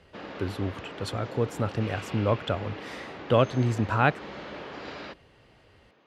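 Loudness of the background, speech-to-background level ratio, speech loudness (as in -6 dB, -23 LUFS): -40.5 LUFS, 12.5 dB, -28.0 LUFS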